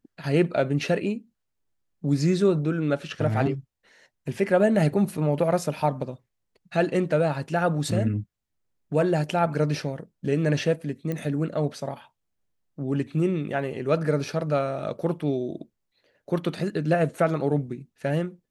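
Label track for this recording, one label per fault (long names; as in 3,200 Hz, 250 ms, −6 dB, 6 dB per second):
11.120000	11.120000	click −18 dBFS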